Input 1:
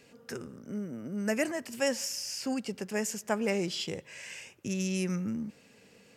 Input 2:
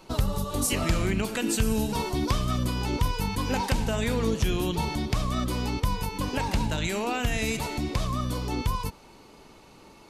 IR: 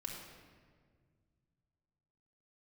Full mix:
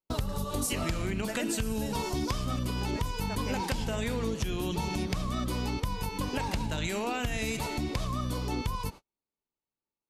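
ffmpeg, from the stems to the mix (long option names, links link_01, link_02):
-filter_complex "[0:a]tremolo=f=0.79:d=0.58,volume=-5dB[link_01];[1:a]volume=-1dB[link_02];[link_01][link_02]amix=inputs=2:normalize=0,agate=range=-45dB:threshold=-41dB:ratio=16:detection=peak,acompressor=threshold=-27dB:ratio=6"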